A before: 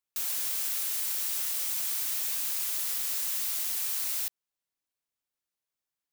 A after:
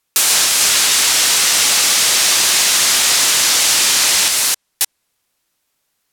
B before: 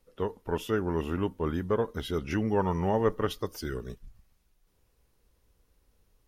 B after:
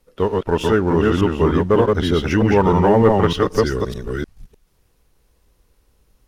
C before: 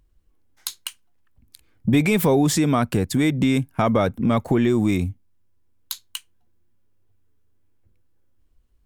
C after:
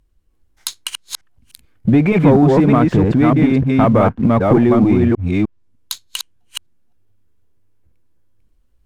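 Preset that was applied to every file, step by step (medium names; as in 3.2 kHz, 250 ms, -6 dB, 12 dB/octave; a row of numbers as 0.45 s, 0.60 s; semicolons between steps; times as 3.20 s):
chunks repeated in reverse 303 ms, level -2 dB; low-pass that closes with the level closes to 1.6 kHz, closed at -16.5 dBFS; waveshaping leveller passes 1; peak normalisation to -2 dBFS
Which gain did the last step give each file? +21.5 dB, +8.5 dB, +3.0 dB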